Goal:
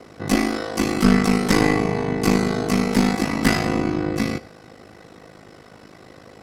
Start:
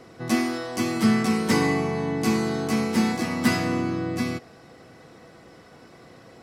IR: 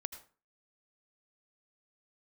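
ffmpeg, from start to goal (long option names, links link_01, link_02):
-filter_complex "[0:a]aeval=exprs='0.422*(cos(1*acos(clip(val(0)/0.422,-1,1)))-cos(1*PI/2))+0.0376*(cos(4*acos(clip(val(0)/0.422,-1,1)))-cos(4*PI/2))':channel_layout=same,aeval=exprs='clip(val(0),-1,0.112)':channel_layout=same,aeval=exprs='val(0)*sin(2*PI*26*n/s)':channel_layout=same,asplit=2[link_01][link_02];[1:a]atrim=start_sample=2205[link_03];[link_02][link_03]afir=irnorm=-1:irlink=0,volume=-5dB[link_04];[link_01][link_04]amix=inputs=2:normalize=0,volume=3.5dB"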